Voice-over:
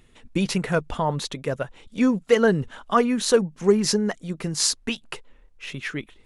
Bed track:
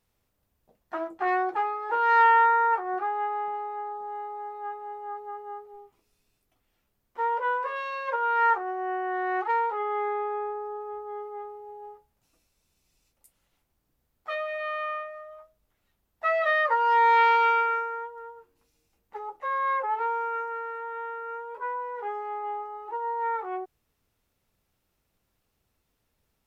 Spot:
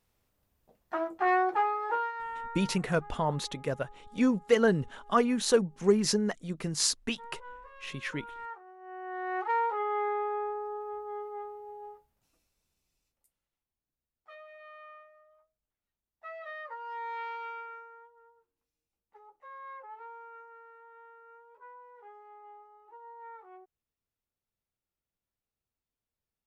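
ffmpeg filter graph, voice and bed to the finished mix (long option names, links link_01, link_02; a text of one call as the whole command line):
ffmpeg -i stem1.wav -i stem2.wav -filter_complex "[0:a]adelay=2200,volume=-5.5dB[link_01];[1:a]volume=18dB,afade=type=out:start_time=1.85:duration=0.27:silence=0.1,afade=type=in:start_time=8.8:duration=0.86:silence=0.125893,afade=type=out:start_time=11.83:duration=1.67:silence=0.149624[link_02];[link_01][link_02]amix=inputs=2:normalize=0" out.wav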